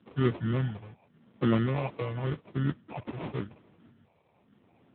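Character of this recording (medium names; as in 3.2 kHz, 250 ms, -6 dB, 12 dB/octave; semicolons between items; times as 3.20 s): phasing stages 4, 0.89 Hz, lowest notch 240–2700 Hz; aliases and images of a low sample rate 1.6 kHz, jitter 0%; AMR-NB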